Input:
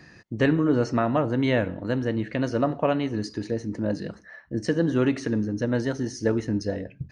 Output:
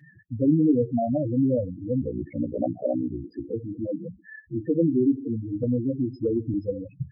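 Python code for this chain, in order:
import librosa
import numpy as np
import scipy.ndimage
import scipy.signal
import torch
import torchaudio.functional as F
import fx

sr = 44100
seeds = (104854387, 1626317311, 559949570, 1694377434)

y = scipy.signal.sosfilt(scipy.signal.butter(4, 4300.0, 'lowpass', fs=sr, output='sos'), x)
y = fx.spec_topn(y, sr, count=4)
y = fx.notch_comb(y, sr, f0_hz=210.0)
y = fx.ring_mod(y, sr, carrier_hz=30.0, at=(2.01, 3.52), fade=0.02)
y = fx.band_squash(y, sr, depth_pct=70, at=(5.63, 6.54))
y = F.gain(torch.from_numpy(y), 3.5).numpy()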